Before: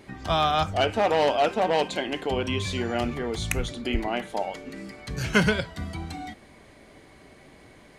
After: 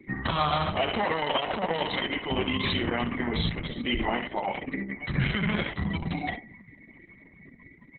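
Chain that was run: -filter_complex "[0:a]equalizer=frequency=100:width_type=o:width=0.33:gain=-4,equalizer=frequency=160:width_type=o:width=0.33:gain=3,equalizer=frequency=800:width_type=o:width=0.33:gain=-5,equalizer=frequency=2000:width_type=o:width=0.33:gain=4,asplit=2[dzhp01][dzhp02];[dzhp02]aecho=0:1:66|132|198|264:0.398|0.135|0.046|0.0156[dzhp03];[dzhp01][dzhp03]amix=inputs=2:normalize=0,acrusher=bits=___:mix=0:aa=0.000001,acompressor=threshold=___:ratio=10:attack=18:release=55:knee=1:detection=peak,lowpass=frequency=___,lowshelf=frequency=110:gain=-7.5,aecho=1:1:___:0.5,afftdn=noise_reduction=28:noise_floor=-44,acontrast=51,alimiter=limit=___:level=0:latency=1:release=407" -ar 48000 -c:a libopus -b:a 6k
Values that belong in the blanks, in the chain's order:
9, -26dB, 8600, 1, -14dB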